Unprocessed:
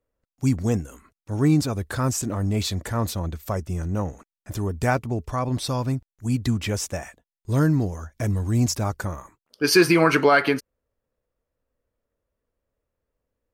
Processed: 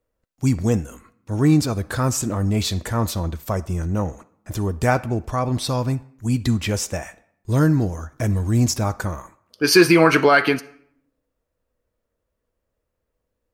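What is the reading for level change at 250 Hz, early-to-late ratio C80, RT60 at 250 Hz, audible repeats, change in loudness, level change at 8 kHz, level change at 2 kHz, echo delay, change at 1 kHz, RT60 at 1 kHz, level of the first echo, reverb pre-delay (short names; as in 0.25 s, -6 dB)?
+3.0 dB, 21.0 dB, 1.0 s, none, +3.0 dB, +3.0 dB, +3.0 dB, none, +3.0 dB, 0.65 s, none, 6 ms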